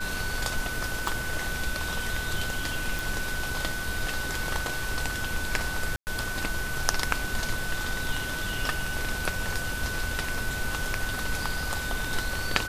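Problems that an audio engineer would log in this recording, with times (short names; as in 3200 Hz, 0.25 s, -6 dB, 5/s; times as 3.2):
tone 1500 Hz -33 dBFS
1.08 pop
2.99 pop
5.96–6.07 gap 0.109 s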